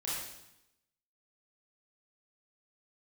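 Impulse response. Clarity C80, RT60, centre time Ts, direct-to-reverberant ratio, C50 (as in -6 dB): 2.5 dB, 0.85 s, 75 ms, -8.0 dB, -1.5 dB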